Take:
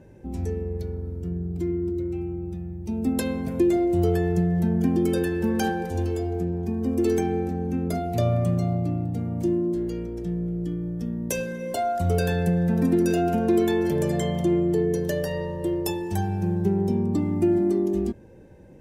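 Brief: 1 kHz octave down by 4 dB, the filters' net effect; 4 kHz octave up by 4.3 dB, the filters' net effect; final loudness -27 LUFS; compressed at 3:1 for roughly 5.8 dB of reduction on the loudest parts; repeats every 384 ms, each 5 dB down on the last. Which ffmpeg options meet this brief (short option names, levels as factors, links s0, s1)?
-af "equalizer=f=1000:t=o:g=-7.5,equalizer=f=4000:t=o:g=6,acompressor=threshold=0.0562:ratio=3,aecho=1:1:384|768|1152|1536|1920|2304|2688:0.562|0.315|0.176|0.0988|0.0553|0.031|0.0173"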